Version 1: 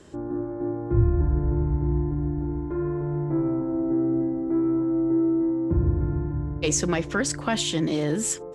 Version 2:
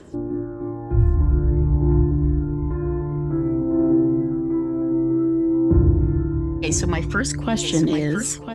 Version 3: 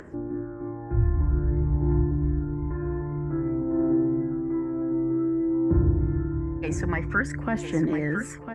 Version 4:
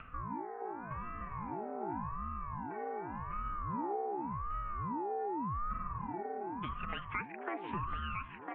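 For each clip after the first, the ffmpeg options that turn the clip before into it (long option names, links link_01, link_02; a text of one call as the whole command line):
ffmpeg -i in.wav -af "aphaser=in_gain=1:out_gain=1:delay=1.3:decay=0.51:speed=0.52:type=triangular,equalizer=frequency=300:width=4.2:gain=2,aecho=1:1:1003:0.376" out.wav
ffmpeg -i in.wav -af "highshelf=frequency=2600:width_type=q:width=3:gain=-11,acompressor=mode=upward:threshold=-33dB:ratio=2.5,volume=-5.5dB" out.wav
ffmpeg -i in.wav -af "highpass=frequency=190:width_type=q:width=0.5412,highpass=frequency=190:width_type=q:width=1.307,lowpass=frequency=2500:width_type=q:width=0.5176,lowpass=frequency=2500:width_type=q:width=0.7071,lowpass=frequency=2500:width_type=q:width=1.932,afreqshift=280,acompressor=threshold=-31dB:ratio=3,aeval=exprs='val(0)*sin(2*PI*410*n/s+410*0.6/0.87*sin(2*PI*0.87*n/s))':channel_layout=same,volume=-3dB" out.wav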